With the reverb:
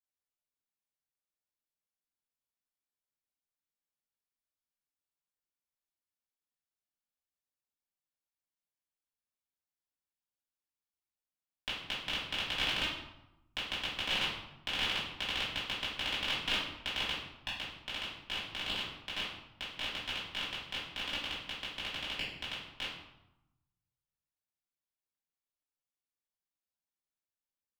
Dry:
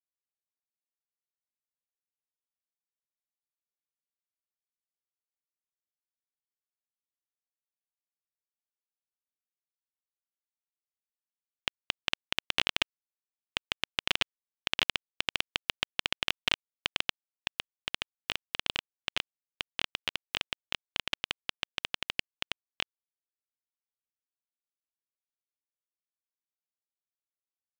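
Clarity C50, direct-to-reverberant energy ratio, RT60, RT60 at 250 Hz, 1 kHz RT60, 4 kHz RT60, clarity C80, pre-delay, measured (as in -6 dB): 1.5 dB, -9.5 dB, 0.90 s, 1.2 s, 0.95 s, 0.60 s, 5.5 dB, 4 ms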